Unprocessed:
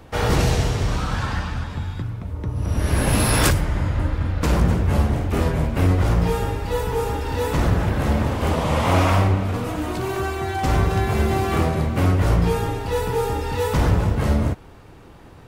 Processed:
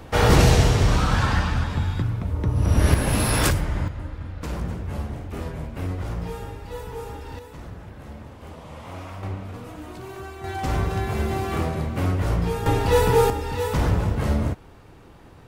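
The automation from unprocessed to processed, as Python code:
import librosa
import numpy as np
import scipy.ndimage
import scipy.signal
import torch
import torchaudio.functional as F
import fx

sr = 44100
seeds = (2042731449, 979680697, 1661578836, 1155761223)

y = fx.gain(x, sr, db=fx.steps((0.0, 3.5), (2.94, -3.0), (3.88, -11.0), (7.39, -19.5), (9.23, -12.0), (10.44, -5.0), (12.66, 5.0), (13.3, -3.0)))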